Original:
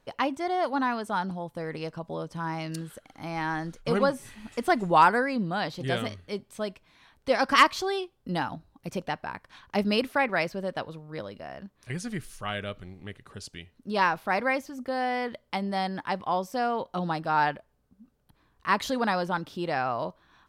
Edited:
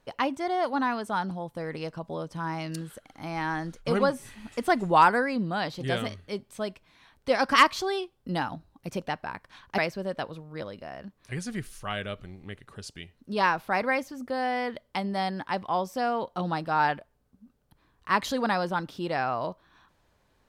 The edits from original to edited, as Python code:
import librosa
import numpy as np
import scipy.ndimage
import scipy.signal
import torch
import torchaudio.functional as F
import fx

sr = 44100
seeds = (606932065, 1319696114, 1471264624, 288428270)

y = fx.edit(x, sr, fx.cut(start_s=9.78, length_s=0.58), tone=tone)